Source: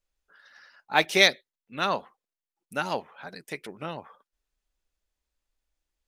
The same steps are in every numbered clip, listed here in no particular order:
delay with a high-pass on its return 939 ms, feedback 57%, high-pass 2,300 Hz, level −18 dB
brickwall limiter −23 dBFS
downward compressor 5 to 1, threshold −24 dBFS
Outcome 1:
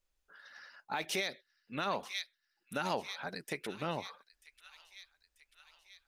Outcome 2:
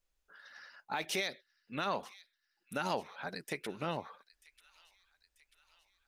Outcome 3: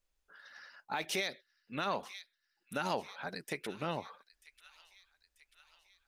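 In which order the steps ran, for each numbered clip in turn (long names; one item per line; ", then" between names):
delay with a high-pass on its return, then downward compressor, then brickwall limiter
downward compressor, then brickwall limiter, then delay with a high-pass on its return
downward compressor, then delay with a high-pass on its return, then brickwall limiter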